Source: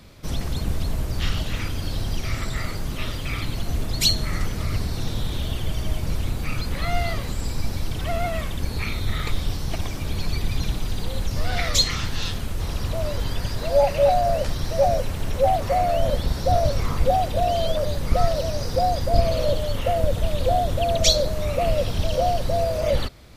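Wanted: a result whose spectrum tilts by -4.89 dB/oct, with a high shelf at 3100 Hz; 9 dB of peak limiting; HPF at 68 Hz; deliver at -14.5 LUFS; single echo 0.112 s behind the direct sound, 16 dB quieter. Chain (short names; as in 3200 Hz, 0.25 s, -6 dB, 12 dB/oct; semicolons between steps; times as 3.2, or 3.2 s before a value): HPF 68 Hz; high shelf 3100 Hz -6.5 dB; limiter -16.5 dBFS; echo 0.112 s -16 dB; gain +13.5 dB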